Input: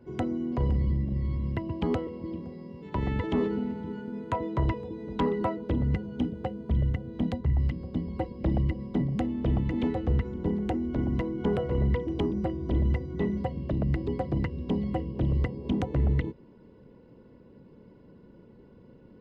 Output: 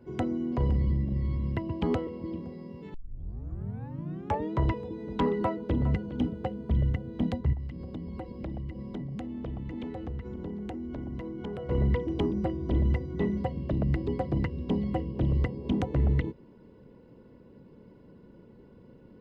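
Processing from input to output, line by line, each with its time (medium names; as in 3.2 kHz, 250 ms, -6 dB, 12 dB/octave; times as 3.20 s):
2.94 s: tape start 1.59 s
5.39–5.85 s: echo throw 410 ms, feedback 20%, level -13.5 dB
7.53–11.69 s: compression 5:1, threshold -34 dBFS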